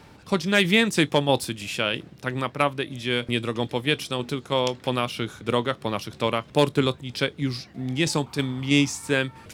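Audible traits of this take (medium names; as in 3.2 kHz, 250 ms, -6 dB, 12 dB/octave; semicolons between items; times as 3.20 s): tremolo saw down 3.1 Hz, depth 35%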